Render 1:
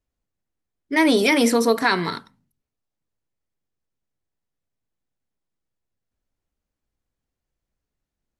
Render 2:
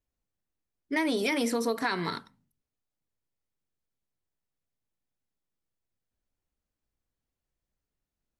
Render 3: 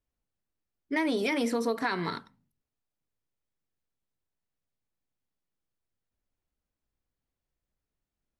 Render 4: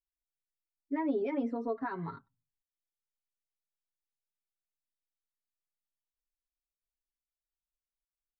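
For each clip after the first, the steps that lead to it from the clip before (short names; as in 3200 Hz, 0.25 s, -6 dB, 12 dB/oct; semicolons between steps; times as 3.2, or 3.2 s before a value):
compressor 4:1, threshold -21 dBFS, peak gain reduction 7.5 dB; gain -4.5 dB
high shelf 5000 Hz -7.5 dB
per-bin expansion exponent 1.5; LPF 1100 Hz 12 dB/oct; comb 7.3 ms, depth 69%; gain -3.5 dB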